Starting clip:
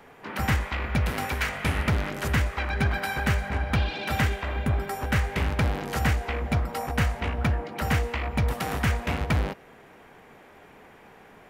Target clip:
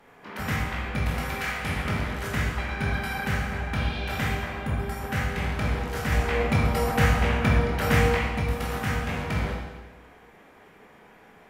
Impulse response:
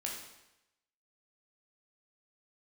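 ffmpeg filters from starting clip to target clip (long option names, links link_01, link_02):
-filter_complex "[0:a]asettb=1/sr,asplit=3[link_01][link_02][link_03];[link_01]atrim=end=6.124[link_04];[link_02]atrim=start=6.12:end=8.19,asetpts=PTS-STARTPTS,afade=type=in:duration=0.004:curve=qsin,afade=type=out:start_time=2.066:duration=0.004:curve=qsin,acontrast=71[link_05];[link_03]atrim=start=8.186[link_06];[link_04][link_05]acrossfade=duration=0.004:curve1=hsin:curve2=qsin[link_07];[link_07][link_06]acrossfade=duration=0.004:curve1=qsin:curve2=hsin[link_08];[1:a]atrim=start_sample=2205,asetrate=32634,aresample=44100[link_09];[link_08][link_09]afir=irnorm=-1:irlink=0,volume=-4.5dB"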